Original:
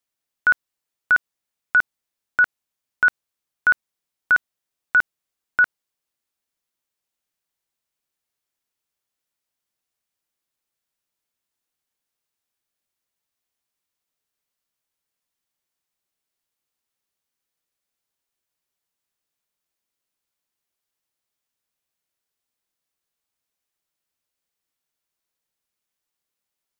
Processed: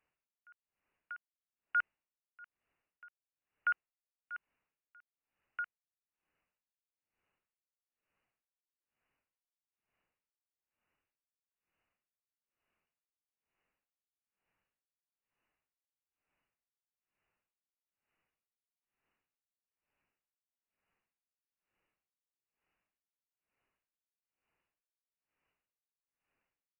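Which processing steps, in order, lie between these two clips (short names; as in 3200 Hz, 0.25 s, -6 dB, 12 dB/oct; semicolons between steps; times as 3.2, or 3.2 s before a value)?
soft clip -33 dBFS, distortion -8 dB; inverted band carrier 2900 Hz; dB-linear tremolo 1.1 Hz, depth 32 dB; gain +7 dB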